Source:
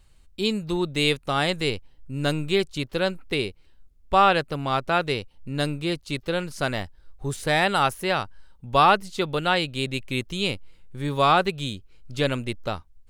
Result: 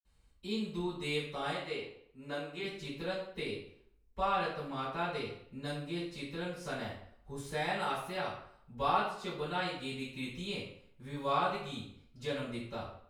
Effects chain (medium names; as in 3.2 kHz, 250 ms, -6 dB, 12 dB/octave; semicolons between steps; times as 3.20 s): 1.47–2.58 s: tone controls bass -12 dB, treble -8 dB; in parallel at +0.5 dB: compression, threshold -30 dBFS, peak gain reduction 16.5 dB; on the sum: reverberation RT60 0.65 s, pre-delay 46 ms